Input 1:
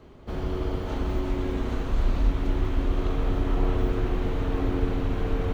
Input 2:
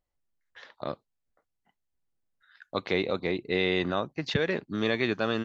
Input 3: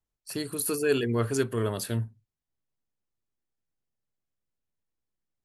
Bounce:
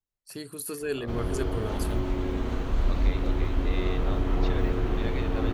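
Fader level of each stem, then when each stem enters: -1.0, -11.5, -6.0 dB; 0.80, 0.15, 0.00 s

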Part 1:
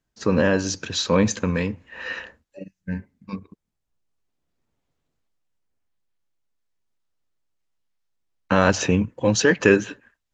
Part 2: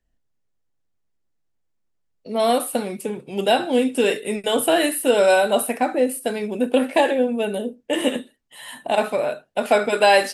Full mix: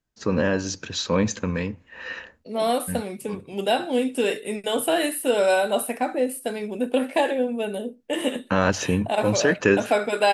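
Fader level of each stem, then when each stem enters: -3.0, -4.0 dB; 0.00, 0.20 s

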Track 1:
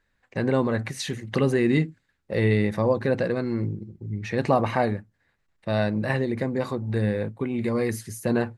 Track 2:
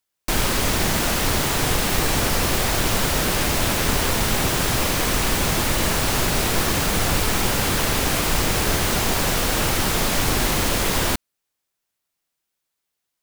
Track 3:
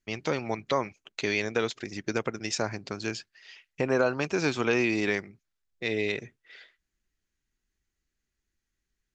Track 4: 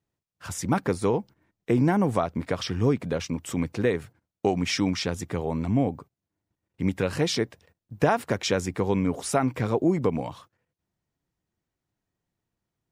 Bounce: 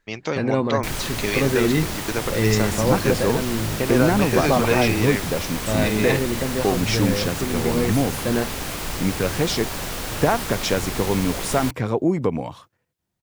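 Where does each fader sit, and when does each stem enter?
+1.0, -8.0, +3.0, +2.5 dB; 0.00, 0.55, 0.00, 2.20 s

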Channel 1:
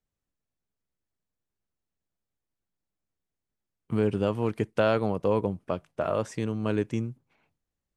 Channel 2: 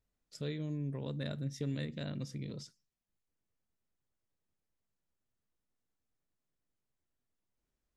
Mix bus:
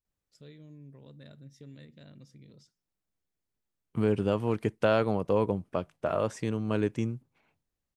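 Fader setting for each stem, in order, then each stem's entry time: -1.0, -12.0 dB; 0.05, 0.00 s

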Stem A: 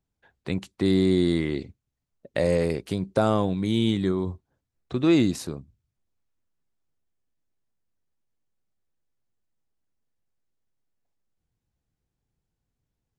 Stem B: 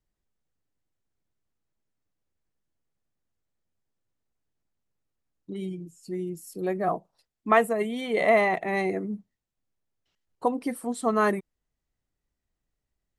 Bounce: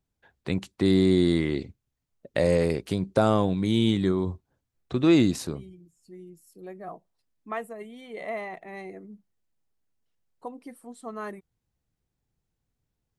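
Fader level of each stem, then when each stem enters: +0.5, -13.0 dB; 0.00, 0.00 s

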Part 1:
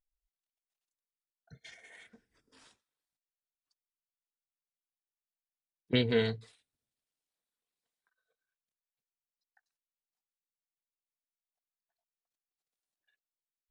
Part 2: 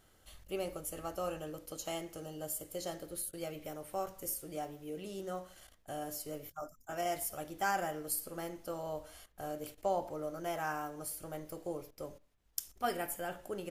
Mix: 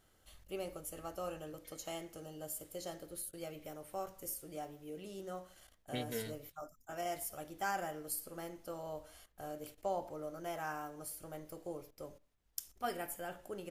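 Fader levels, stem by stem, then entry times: -13.5, -4.0 dB; 0.00, 0.00 s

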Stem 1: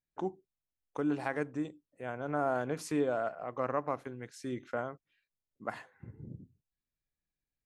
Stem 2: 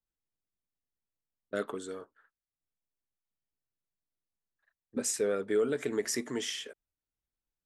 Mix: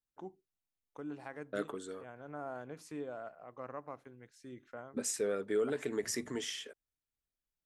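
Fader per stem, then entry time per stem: -11.5, -4.0 dB; 0.00, 0.00 s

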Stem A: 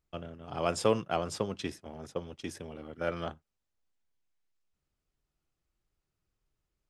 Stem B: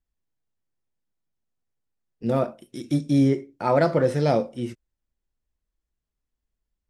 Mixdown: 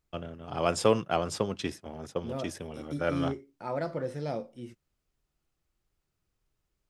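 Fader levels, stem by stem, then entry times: +3.0, -13.0 dB; 0.00, 0.00 s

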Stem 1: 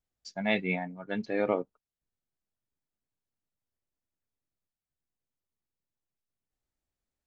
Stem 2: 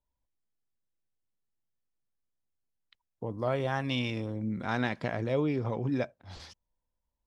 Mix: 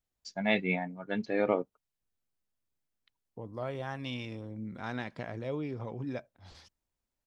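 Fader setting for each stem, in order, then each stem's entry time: 0.0, -7.0 dB; 0.00, 0.15 s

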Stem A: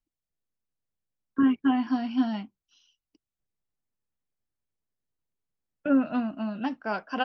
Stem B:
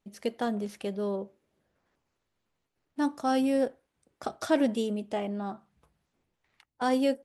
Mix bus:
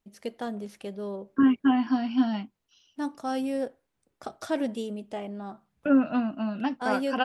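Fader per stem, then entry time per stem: +1.5, -3.5 dB; 0.00, 0.00 s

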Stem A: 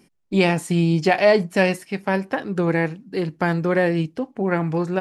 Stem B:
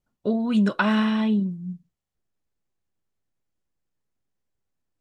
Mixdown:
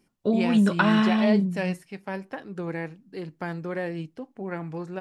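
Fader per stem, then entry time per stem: -11.5, +0.5 dB; 0.00, 0.00 s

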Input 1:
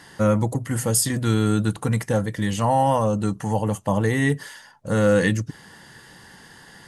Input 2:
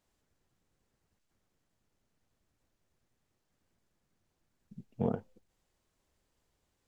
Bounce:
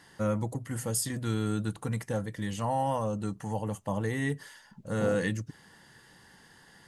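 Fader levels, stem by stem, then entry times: -10.0, -3.0 dB; 0.00, 0.00 s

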